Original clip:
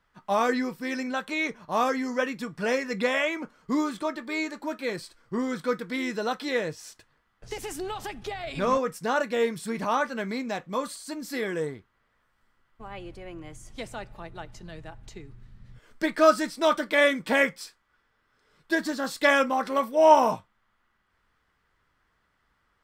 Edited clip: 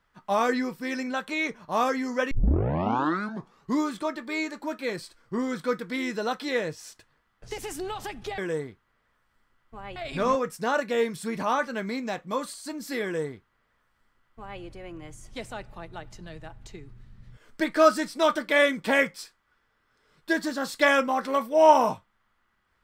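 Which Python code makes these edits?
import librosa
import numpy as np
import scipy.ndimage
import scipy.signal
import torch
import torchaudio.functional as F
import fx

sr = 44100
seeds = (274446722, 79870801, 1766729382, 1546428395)

y = fx.edit(x, sr, fx.tape_start(start_s=2.31, length_s=1.46),
    fx.duplicate(start_s=11.45, length_s=1.58, to_s=8.38), tone=tone)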